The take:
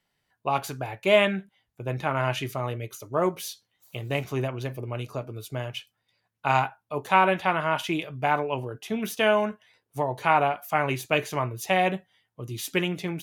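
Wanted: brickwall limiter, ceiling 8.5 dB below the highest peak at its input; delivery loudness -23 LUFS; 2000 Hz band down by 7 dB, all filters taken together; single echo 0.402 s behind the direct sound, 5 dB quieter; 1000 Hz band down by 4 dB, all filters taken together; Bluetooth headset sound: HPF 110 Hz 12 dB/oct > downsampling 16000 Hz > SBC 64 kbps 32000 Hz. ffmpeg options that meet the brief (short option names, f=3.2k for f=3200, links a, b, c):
-af "equalizer=f=1k:t=o:g=-3.5,equalizer=f=2k:t=o:g=-8.5,alimiter=limit=-17dB:level=0:latency=1,highpass=110,aecho=1:1:402:0.562,aresample=16000,aresample=44100,volume=7.5dB" -ar 32000 -c:a sbc -b:a 64k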